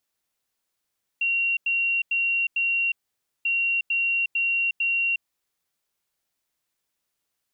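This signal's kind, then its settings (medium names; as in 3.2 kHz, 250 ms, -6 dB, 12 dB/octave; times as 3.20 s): beep pattern sine 2.75 kHz, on 0.36 s, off 0.09 s, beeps 4, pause 0.53 s, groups 2, -20.5 dBFS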